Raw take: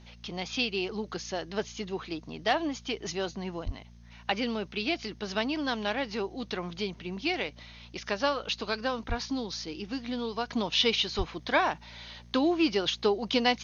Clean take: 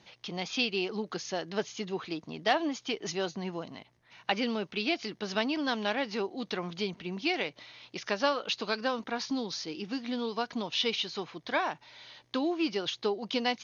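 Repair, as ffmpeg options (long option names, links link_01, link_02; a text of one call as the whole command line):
ffmpeg -i in.wav -filter_complex "[0:a]bandreject=frequency=58.2:width_type=h:width=4,bandreject=frequency=116.4:width_type=h:width=4,bandreject=frequency=174.6:width_type=h:width=4,bandreject=frequency=232.8:width_type=h:width=4,asplit=3[link_01][link_02][link_03];[link_01]afade=type=out:start_time=3.65:duration=0.02[link_04];[link_02]highpass=frequency=140:width=0.5412,highpass=frequency=140:width=1.3066,afade=type=in:start_time=3.65:duration=0.02,afade=type=out:start_time=3.77:duration=0.02[link_05];[link_03]afade=type=in:start_time=3.77:duration=0.02[link_06];[link_04][link_05][link_06]amix=inputs=3:normalize=0,asplit=3[link_07][link_08][link_09];[link_07]afade=type=out:start_time=9.08:duration=0.02[link_10];[link_08]highpass=frequency=140:width=0.5412,highpass=frequency=140:width=1.3066,afade=type=in:start_time=9.08:duration=0.02,afade=type=out:start_time=9.2:duration=0.02[link_11];[link_09]afade=type=in:start_time=9.2:duration=0.02[link_12];[link_10][link_11][link_12]amix=inputs=3:normalize=0,asplit=3[link_13][link_14][link_15];[link_13]afade=type=out:start_time=11.17:duration=0.02[link_16];[link_14]highpass=frequency=140:width=0.5412,highpass=frequency=140:width=1.3066,afade=type=in:start_time=11.17:duration=0.02,afade=type=out:start_time=11.29:duration=0.02[link_17];[link_15]afade=type=in:start_time=11.29:duration=0.02[link_18];[link_16][link_17][link_18]amix=inputs=3:normalize=0,agate=range=-21dB:threshold=-42dB,asetnsamples=nb_out_samples=441:pad=0,asendcmd='10.5 volume volume -4.5dB',volume=0dB" out.wav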